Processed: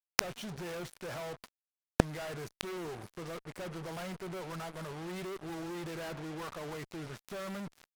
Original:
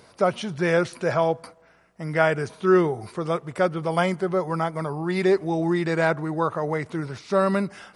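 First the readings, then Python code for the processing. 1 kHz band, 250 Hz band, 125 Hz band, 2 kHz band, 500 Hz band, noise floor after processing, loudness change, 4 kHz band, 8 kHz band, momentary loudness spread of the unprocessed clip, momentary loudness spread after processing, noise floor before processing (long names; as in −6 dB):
−16.5 dB, −15.0 dB, −13.5 dB, −14.0 dB, −18.0 dB, below −85 dBFS, −16.0 dB, −5.0 dB, can't be measured, 7 LU, 11 LU, −56 dBFS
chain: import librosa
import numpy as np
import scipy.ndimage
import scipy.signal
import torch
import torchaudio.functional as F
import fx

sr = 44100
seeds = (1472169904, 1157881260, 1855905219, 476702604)

y = fx.fuzz(x, sr, gain_db=41.0, gate_db=-36.0)
y = fx.gate_flip(y, sr, shuts_db=-19.0, range_db=-38)
y = y * 10.0 ** (12.5 / 20.0)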